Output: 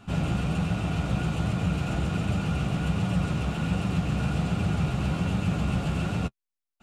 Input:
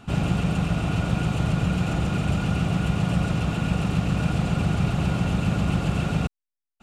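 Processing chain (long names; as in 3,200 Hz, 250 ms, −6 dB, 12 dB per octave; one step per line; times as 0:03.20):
flanger 1.3 Hz, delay 9.5 ms, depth 6 ms, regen −17%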